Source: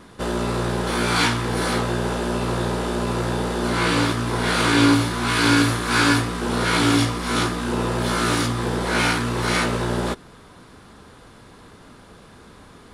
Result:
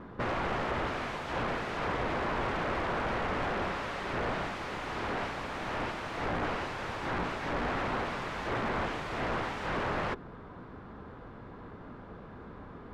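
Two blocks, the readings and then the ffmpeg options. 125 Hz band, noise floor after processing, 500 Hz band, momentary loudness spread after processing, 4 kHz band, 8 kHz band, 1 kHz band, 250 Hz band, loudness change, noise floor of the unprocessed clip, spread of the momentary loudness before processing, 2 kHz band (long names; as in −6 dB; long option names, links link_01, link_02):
−16.0 dB, −48 dBFS, −9.5 dB, 16 LU, −18.0 dB, −25.0 dB, −8.5 dB, −16.5 dB, −12.5 dB, −47 dBFS, 7 LU, −11.5 dB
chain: -af "aeval=exprs='(mod(14.1*val(0)+1,2)-1)/14.1':channel_layout=same,lowpass=1500"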